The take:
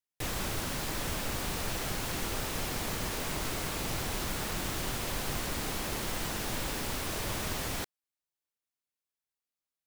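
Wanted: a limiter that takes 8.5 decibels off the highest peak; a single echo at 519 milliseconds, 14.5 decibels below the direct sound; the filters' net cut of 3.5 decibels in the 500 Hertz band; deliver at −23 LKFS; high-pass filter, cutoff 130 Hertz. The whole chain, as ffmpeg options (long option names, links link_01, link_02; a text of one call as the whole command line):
ffmpeg -i in.wav -af "highpass=130,equalizer=frequency=500:width_type=o:gain=-4.5,alimiter=level_in=7.5dB:limit=-24dB:level=0:latency=1,volume=-7.5dB,aecho=1:1:519:0.188,volume=16dB" out.wav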